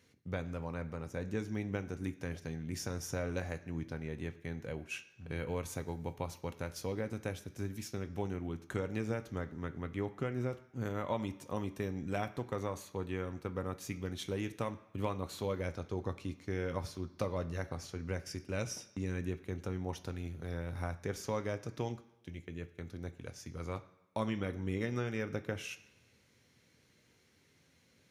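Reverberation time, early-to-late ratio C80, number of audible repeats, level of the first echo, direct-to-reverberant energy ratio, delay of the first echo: 1.0 s, 17.5 dB, none, none, 8.0 dB, none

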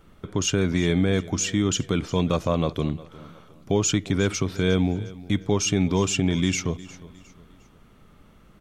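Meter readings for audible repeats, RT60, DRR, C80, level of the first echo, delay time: 2, none, none, none, -19.0 dB, 0.357 s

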